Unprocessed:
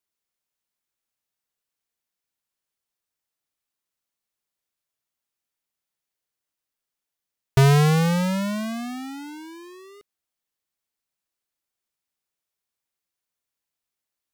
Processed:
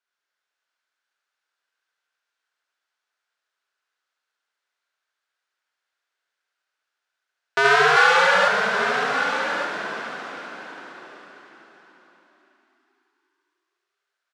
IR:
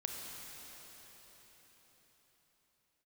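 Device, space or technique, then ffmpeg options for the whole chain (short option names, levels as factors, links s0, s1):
station announcement: -filter_complex "[0:a]highpass=490,lowpass=4800,equalizer=f=1500:t=o:w=0.45:g=11,aecho=1:1:72.89|172:0.794|0.316[s0];[1:a]atrim=start_sample=2205[s1];[s0][s1]afir=irnorm=-1:irlink=0,highpass=260,asettb=1/sr,asplit=3[s2][s3][s4];[s2]atrim=end=7.964[s5];[s3]atrim=start=7.96:end=8.48,asetpts=PTS-STARTPTS,afade=t=in:d=0.004:c=qsin,afade=t=out:st=0.516:d=0.004:c=qsin,aecho=1:1:3.5:0.92,atrim=end_sample=22932[s6];[s4]atrim=start=8.476[s7];[s5][s6]acrossfade=d=0.004:c1=hsin:c2=qsin[s8];[s8][s7]acrossfade=d=0.004:c1=qsin:c2=hsin,aecho=1:1:1172:0.316,volume=1.58"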